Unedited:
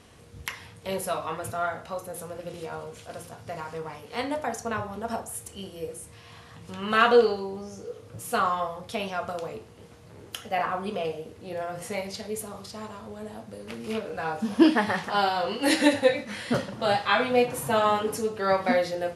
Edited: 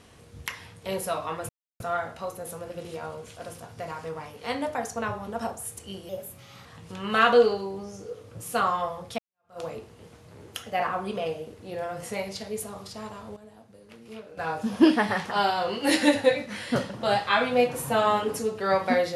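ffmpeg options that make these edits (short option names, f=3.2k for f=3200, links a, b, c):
-filter_complex "[0:a]asplit=7[a][b][c][d][e][f][g];[a]atrim=end=1.49,asetpts=PTS-STARTPTS,afade=t=out:st=1.486:d=0.004:c=hsin,apad=pad_dur=0.31[h];[b]atrim=start=1.49:end=5.784,asetpts=PTS-STARTPTS,afade=t=in:d=0.004:c=hsin[i];[c]atrim=start=5.78:end=6.44,asetpts=PTS-STARTPTS,asetrate=51597,aresample=44100[j];[d]atrim=start=6.436:end=8.97,asetpts=PTS-STARTPTS,afade=t=out:st=2.53:d=0.004:c=hsin[k];[e]atrim=start=8.97:end=13.152,asetpts=PTS-STARTPTS,afade=t=in:d=0.42:c=exp[l];[f]atrim=start=13.148:end=14.162,asetpts=PTS-STARTPTS,volume=-11dB[m];[g]atrim=start=14.158[n];[h][i]concat=n=2:v=0:a=1[o];[o][j]acrossfade=d=0.004:c1=hsin:c2=hsin[p];[k][l]concat=n=2:v=0:a=1[q];[p][q]acrossfade=d=0.004:c1=hsin:c2=hsin[r];[r][m]acrossfade=d=0.004:c1=hsin:c2=hsin[s];[s][n]acrossfade=d=0.004:c1=hsin:c2=hsin"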